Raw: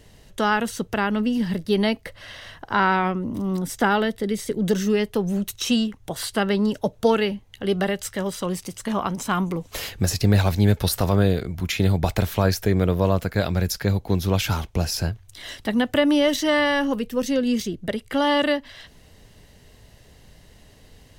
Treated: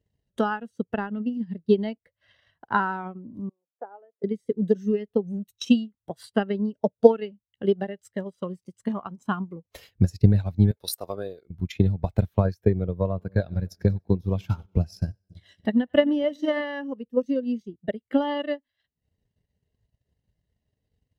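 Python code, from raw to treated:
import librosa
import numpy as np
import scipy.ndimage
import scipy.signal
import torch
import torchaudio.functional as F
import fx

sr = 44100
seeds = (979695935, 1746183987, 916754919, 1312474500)

y = fx.ladder_bandpass(x, sr, hz=690.0, resonance_pct=35, at=(3.49, 4.24))
y = fx.bass_treble(y, sr, bass_db=-15, treble_db=5, at=(10.71, 11.5))
y = fx.echo_split(y, sr, split_hz=620.0, low_ms=279, high_ms=96, feedback_pct=52, wet_db=-14.5, at=(13.15, 16.63), fade=0.02)
y = scipy.signal.sosfilt(scipy.signal.butter(2, 48.0, 'highpass', fs=sr, output='sos'), y)
y = fx.transient(y, sr, attack_db=10, sustain_db=-9)
y = fx.spectral_expand(y, sr, expansion=1.5)
y = y * librosa.db_to_amplitude(-4.0)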